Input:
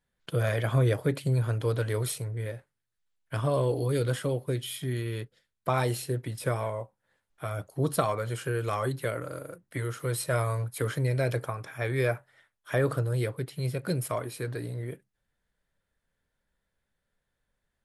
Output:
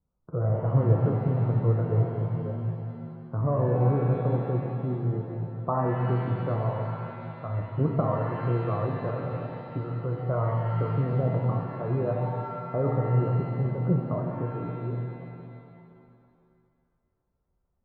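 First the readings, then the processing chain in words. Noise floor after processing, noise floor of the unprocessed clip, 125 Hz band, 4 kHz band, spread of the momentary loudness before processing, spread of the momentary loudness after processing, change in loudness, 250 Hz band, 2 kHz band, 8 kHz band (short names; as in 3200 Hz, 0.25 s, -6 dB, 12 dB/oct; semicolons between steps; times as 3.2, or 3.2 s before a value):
-75 dBFS, -82 dBFS, +4.5 dB, under -15 dB, 10 LU, 11 LU, +2.5 dB, +4.5 dB, -8.5 dB, under -40 dB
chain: steep low-pass 1300 Hz 72 dB/oct; bell 71 Hz +7.5 dB 2.7 oct; harmonic tremolo 4.1 Hz, depth 50%, crossover 540 Hz; shimmer reverb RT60 2.3 s, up +7 st, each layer -8 dB, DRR 0.5 dB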